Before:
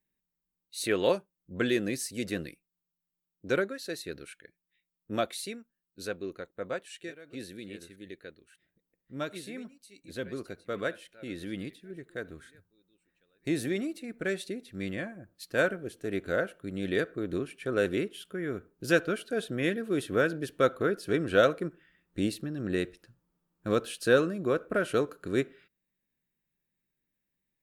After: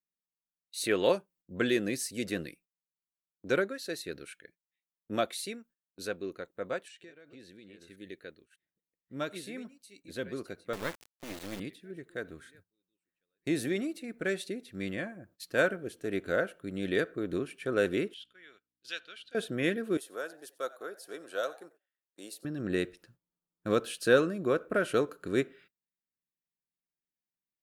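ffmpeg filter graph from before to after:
ffmpeg -i in.wav -filter_complex "[0:a]asettb=1/sr,asplit=3[link_01][link_02][link_03];[link_01]atrim=end=6.884[link_04];[link_02]atrim=start=6.88:end=7.88,asetpts=PTS-STARTPTS,afade=type=in:duration=0.004:curve=qsin,afade=type=out:start_time=0.996:duration=0.004:curve=qsin,equalizer=frequency=11000:width_type=o:width=0.74:gain=-12,acompressor=threshold=-52dB:ratio=2.5:attack=3.2:release=140:knee=1:detection=peak[link_05];[link_03]atrim=start=7.876[link_06];[link_04][link_05]acrossfade=duration=0.004:curve1=hsin:curve2=qsin[link_07];[link_07][link_06]acrossfade=duration=0.004:curve1=qsin:curve2=hsin,asettb=1/sr,asplit=3[link_08][link_09][link_10];[link_08]atrim=end=10.734[link_11];[link_09]atrim=start=10.73:end=11.6,asetpts=PTS-STARTPTS,afade=type=in:duration=0.004:curve=qsin,afade=type=out:start_time=0.866:duration=0.004:curve=qsin,highpass=frequency=120:width=0.5412,highpass=frequency=120:width=1.3066,lowshelf=frequency=230:gain=3.5,acrusher=bits=4:dc=4:mix=0:aa=0.000001[link_12];[link_10]atrim=start=11.596[link_13];[link_11][link_12]acrossfade=duration=0.004:curve1=hsin:curve2=qsin[link_14];[link_14][link_13]acrossfade=duration=0.004:curve1=qsin:curve2=hsin,asettb=1/sr,asplit=3[link_15][link_16][link_17];[link_15]atrim=end=18.144[link_18];[link_16]atrim=start=18.14:end=19.35,asetpts=PTS-STARTPTS,afade=type=in:duration=0.004:curve=qsin,afade=type=out:start_time=1.206:duration=0.004:curve=qsin,aeval=exprs='val(0)+0.00794*(sin(2*PI*60*n/s)+sin(2*PI*2*60*n/s)/2+sin(2*PI*3*60*n/s)/3+sin(2*PI*4*60*n/s)/4+sin(2*PI*5*60*n/s)/5)':channel_layout=same,bandpass=frequency=3500:width_type=q:width=2.6[link_19];[link_17]atrim=start=19.346[link_20];[link_18][link_19]acrossfade=duration=0.004:curve1=hsin:curve2=qsin[link_21];[link_21][link_20]acrossfade=duration=0.004:curve1=qsin:curve2=hsin,asettb=1/sr,asplit=3[link_22][link_23][link_24];[link_22]atrim=end=19.974[link_25];[link_23]atrim=start=19.97:end=22.45,asetpts=PTS-STARTPTS,afade=type=in:duration=0.004:curve=qsin,afade=type=out:start_time=2.476:duration=0.004:curve=qsin,highpass=850,equalizer=frequency=2200:width=0.66:gain=-14.5,asplit=3[link_26][link_27][link_28];[link_27]adelay=92,afreqshift=110,volume=-20.5dB[link_29];[link_28]adelay=184,afreqshift=220,volume=-30.7dB[link_30];[link_26][link_29][link_30]amix=inputs=3:normalize=0,atrim=end_sample=109368[link_31];[link_24]atrim=start=22.446[link_32];[link_25][link_31]acrossfade=duration=0.004:curve1=hsin:curve2=qsin[link_33];[link_33][link_32]acrossfade=duration=0.004:curve1=qsin:curve2=hsin,agate=range=-15dB:threshold=-59dB:ratio=16:detection=peak,lowshelf=frequency=86:gain=-8" out.wav

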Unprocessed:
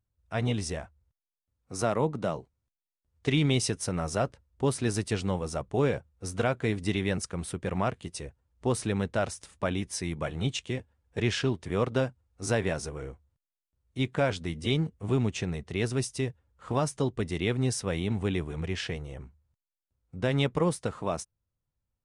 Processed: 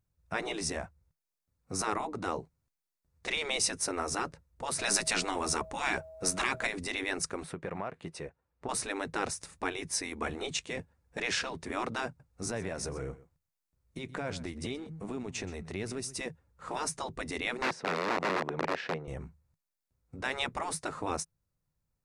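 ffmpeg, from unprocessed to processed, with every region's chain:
ffmpeg -i in.wav -filter_complex "[0:a]asettb=1/sr,asplit=3[link_01][link_02][link_03];[link_01]atrim=end=4.794[link_04];[link_02]atrim=start=4.79:end=6.67,asetpts=PTS-STARTPTS,afade=type=in:duration=0.004:curve=qsin,afade=type=out:start_time=1.876:duration=0.004:curve=qsin,equalizer=frequency=190:width_type=o:width=1.7:gain=-9,acontrast=88,aeval=exprs='val(0)+0.0158*sin(2*PI*640*n/s)':channel_layout=same[link_05];[link_03]atrim=start=6.666[link_06];[link_04][link_05]acrossfade=duration=0.004:curve1=hsin:curve2=qsin[link_07];[link_07][link_06]acrossfade=duration=0.004:curve1=qsin:curve2=hsin,asettb=1/sr,asplit=3[link_08][link_09][link_10];[link_08]atrim=end=7.434[link_11];[link_09]atrim=start=7.43:end=8.69,asetpts=PTS-STARTPTS,afade=type=in:duration=0.004:curve=qsin,afade=type=out:start_time=1.256:duration=0.004:curve=qsin,bass=frequency=250:gain=-11,treble=frequency=4000:gain=-13,acompressor=threshold=-36dB:ratio=4:attack=3.2:release=140:knee=1:detection=peak[link_12];[link_10]atrim=start=8.686[link_13];[link_11][link_12]acrossfade=duration=0.004:curve1=hsin:curve2=qsin[link_14];[link_14][link_13]acrossfade=duration=0.004:curve1=qsin:curve2=hsin,asettb=1/sr,asplit=3[link_15][link_16][link_17];[link_15]atrim=end=12.074[link_18];[link_16]atrim=start=12.07:end=16.21,asetpts=PTS-STARTPTS,afade=type=in:duration=0.004:curve=qsin,afade=type=out:start_time=4.136:duration=0.004:curve=qsin,acompressor=threshold=-34dB:ratio=5:attack=3.2:release=140:knee=1:detection=peak,aecho=1:1:126:0.126,atrim=end_sample=182574[link_19];[link_17]atrim=start=16.206[link_20];[link_18][link_19]acrossfade=duration=0.004:curve1=hsin:curve2=qsin[link_21];[link_21][link_20]acrossfade=duration=0.004:curve1=qsin:curve2=hsin,asettb=1/sr,asplit=3[link_22][link_23][link_24];[link_22]atrim=end=17.624[link_25];[link_23]atrim=start=17.62:end=19.08,asetpts=PTS-STARTPTS,afade=type=in:duration=0.004:curve=qsin,afade=type=out:start_time=1.456:duration=0.004:curve=qsin,tiltshelf=frequency=710:gain=4.5,aeval=exprs='(mod(14.1*val(0)+1,2)-1)/14.1':channel_layout=same,highpass=360,lowpass=3100[link_26];[link_24]atrim=start=19.076[link_27];[link_25][link_26]acrossfade=duration=0.004:curve1=hsin:curve2=qsin[link_28];[link_28][link_27]acrossfade=duration=0.004:curve1=qsin:curve2=hsin,equalizer=frequency=100:width_type=o:width=0.33:gain=3,equalizer=frequency=160:width_type=o:width=0.33:gain=10,equalizer=frequency=3150:width_type=o:width=0.33:gain=-8,afftfilt=real='re*lt(hypot(re,im),0.141)':imag='im*lt(hypot(re,im),0.141)':win_size=1024:overlap=0.75,equalizer=frequency=93:width=0.82:gain=-5,volume=3dB" out.wav

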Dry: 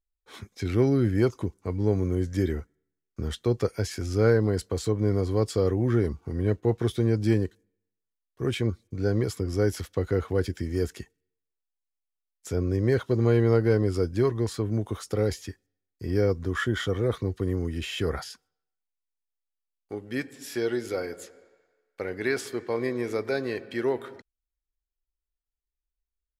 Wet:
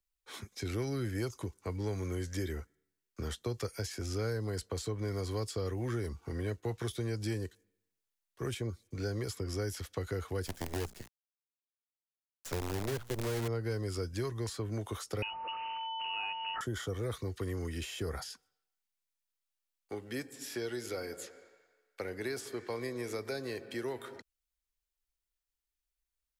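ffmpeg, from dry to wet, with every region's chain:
ffmpeg -i in.wav -filter_complex "[0:a]asettb=1/sr,asplit=3[link_01][link_02][link_03];[link_01]atrim=end=10.464[link_04];[link_02]atrim=start=10.46:end=13.48,asetpts=PTS-STARTPTS,afade=type=in:duration=0.004:curve=qsin,afade=type=out:start_time=3.016:duration=0.004:curve=qsin,bandreject=frequency=60:width_type=h:width=6,bandreject=frequency=120:width_type=h:width=6,bandreject=frequency=180:width_type=h:width=6,bandreject=frequency=240:width_type=h:width=6,acrusher=bits=5:dc=4:mix=0:aa=0.000001[link_05];[link_03]atrim=start=13.476[link_06];[link_04][link_05]acrossfade=duration=0.004:curve1=hsin:curve2=qsin[link_07];[link_07][link_06]acrossfade=duration=0.004:curve1=qsin:curve2=hsin,asettb=1/sr,asplit=3[link_08][link_09][link_10];[link_08]atrim=end=15.224[link_11];[link_09]atrim=start=15.22:end=16.61,asetpts=PTS-STARTPTS,afade=type=in:duration=0.004:curve=qsin,afade=type=out:start_time=1.386:duration=0.004:curve=qsin,aeval=exprs='val(0)+0.5*0.0266*sgn(val(0))':channel_layout=same,aeval=exprs='val(0)+0.0251*sin(2*PI*2100*n/s)':channel_layout=same,lowpass=frequency=2600:width_type=q:width=0.5098,lowpass=frequency=2600:width_type=q:width=0.6013,lowpass=frequency=2600:width_type=q:width=0.9,lowpass=frequency=2600:width_type=q:width=2.563,afreqshift=-3000[link_12];[link_10]atrim=start=16.606[link_13];[link_11][link_12]acrossfade=duration=0.004:curve1=hsin:curve2=qsin[link_14];[link_14][link_13]acrossfade=duration=0.004:curve1=qsin:curve2=hsin,tiltshelf=frequency=910:gain=-4.5,acrossover=split=130|300|1000|5300[link_15][link_16][link_17][link_18][link_19];[link_15]acompressor=threshold=-38dB:ratio=4[link_20];[link_16]acompressor=threshold=-48dB:ratio=4[link_21];[link_17]acompressor=threshold=-39dB:ratio=4[link_22];[link_18]acompressor=threshold=-49dB:ratio=4[link_23];[link_19]acompressor=threshold=-47dB:ratio=4[link_24];[link_20][link_21][link_22][link_23][link_24]amix=inputs=5:normalize=0" out.wav

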